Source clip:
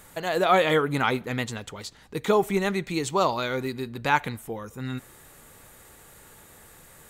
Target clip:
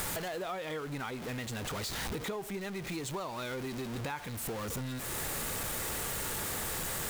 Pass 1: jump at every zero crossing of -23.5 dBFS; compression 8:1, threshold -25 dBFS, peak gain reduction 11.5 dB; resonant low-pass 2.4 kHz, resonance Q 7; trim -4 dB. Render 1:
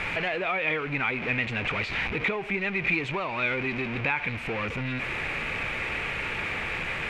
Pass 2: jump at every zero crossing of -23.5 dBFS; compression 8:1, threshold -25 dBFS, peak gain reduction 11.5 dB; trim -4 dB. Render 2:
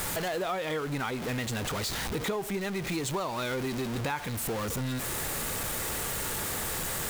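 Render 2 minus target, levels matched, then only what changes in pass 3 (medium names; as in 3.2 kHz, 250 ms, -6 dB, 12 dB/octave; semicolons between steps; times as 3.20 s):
compression: peak gain reduction -6 dB
change: compression 8:1, threshold -32 dBFS, peak gain reduction 17.5 dB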